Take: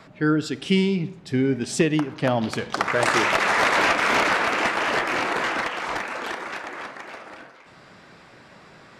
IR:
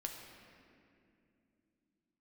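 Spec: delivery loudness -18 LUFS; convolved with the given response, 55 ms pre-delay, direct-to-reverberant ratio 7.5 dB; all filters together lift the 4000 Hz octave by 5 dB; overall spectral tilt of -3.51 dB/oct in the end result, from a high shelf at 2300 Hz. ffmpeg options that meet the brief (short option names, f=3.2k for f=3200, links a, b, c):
-filter_complex "[0:a]highshelf=f=2.3k:g=4,equalizer=f=4k:t=o:g=3,asplit=2[a][b];[1:a]atrim=start_sample=2205,adelay=55[c];[b][c]afir=irnorm=-1:irlink=0,volume=-6dB[d];[a][d]amix=inputs=2:normalize=0,volume=2dB"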